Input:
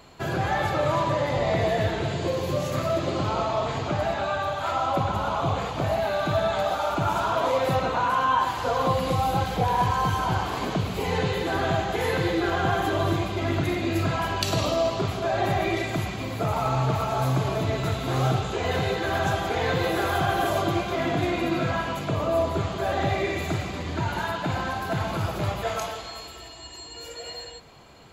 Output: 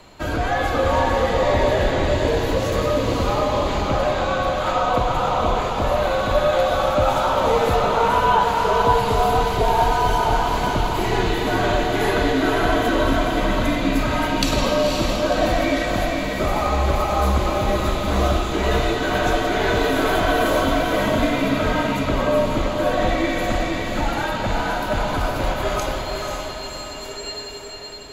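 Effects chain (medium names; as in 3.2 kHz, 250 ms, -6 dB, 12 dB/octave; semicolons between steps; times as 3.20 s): echo that smears into a reverb 515 ms, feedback 48%, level -3.5 dB; frequency shift -62 Hz; trim +4 dB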